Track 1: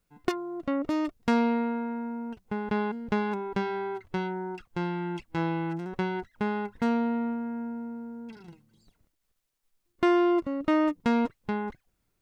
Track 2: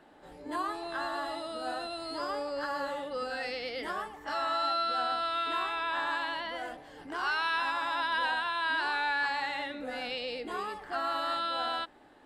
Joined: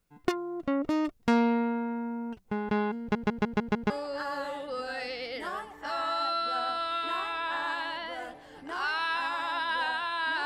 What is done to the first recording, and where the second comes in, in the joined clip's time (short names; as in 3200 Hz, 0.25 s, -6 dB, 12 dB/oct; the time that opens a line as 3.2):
track 1
3 stutter in place 0.15 s, 6 plays
3.9 switch to track 2 from 2.33 s